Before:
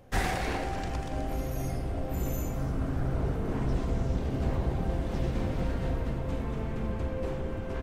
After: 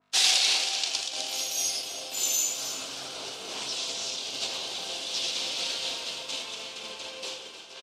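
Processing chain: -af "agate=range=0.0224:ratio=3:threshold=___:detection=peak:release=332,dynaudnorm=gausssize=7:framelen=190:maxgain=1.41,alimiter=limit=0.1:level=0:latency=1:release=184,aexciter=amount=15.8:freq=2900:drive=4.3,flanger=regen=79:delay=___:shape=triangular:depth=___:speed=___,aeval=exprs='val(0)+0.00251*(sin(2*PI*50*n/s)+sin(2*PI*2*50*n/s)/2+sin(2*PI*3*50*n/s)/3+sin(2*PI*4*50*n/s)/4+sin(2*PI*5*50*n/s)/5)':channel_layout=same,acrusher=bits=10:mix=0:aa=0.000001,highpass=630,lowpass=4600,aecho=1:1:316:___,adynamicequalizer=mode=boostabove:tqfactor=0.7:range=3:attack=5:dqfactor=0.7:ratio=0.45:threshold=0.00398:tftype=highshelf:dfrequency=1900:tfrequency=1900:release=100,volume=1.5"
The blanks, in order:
0.0501, 9.2, 5.8, 1.5, 0.251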